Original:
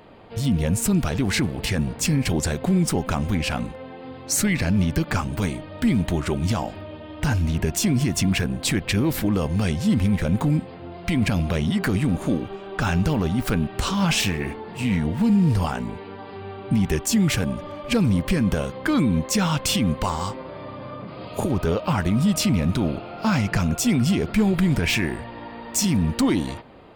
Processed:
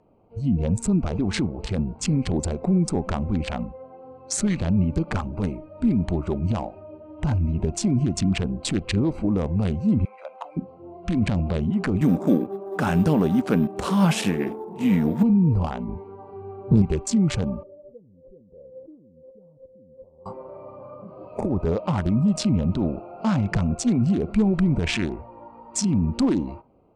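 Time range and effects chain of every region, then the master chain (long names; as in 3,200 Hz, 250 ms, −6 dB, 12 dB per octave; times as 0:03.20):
0:10.05–0:10.57: high-pass filter 610 Hz 24 dB per octave + high-shelf EQ 5,200 Hz −3 dB
0:12.01–0:15.23: high-pass filter 160 Hz + tilt shelving filter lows +5.5 dB, about 1,300 Hz + bad sample-rate conversion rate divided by 3×, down none, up zero stuff
0:15.88–0:16.82: parametric band 64 Hz +8.5 dB 2.9 octaves + highs frequency-modulated by the lows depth 0.59 ms
0:17.63–0:20.26: downward compressor 16 to 1, threshold −30 dBFS + transistor ladder low-pass 560 Hz, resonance 60%
whole clip: adaptive Wiener filter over 25 samples; Butterworth low-pass 9,200 Hz 36 dB per octave; noise reduction from a noise print of the clip's start 11 dB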